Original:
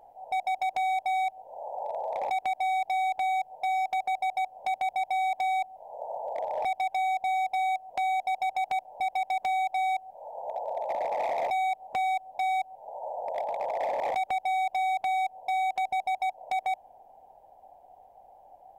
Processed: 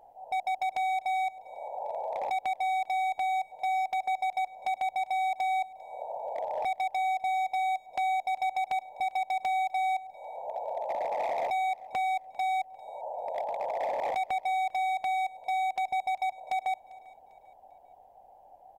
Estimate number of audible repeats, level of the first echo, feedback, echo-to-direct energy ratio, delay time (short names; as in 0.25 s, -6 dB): 2, -22.0 dB, 39%, -21.5 dB, 0.397 s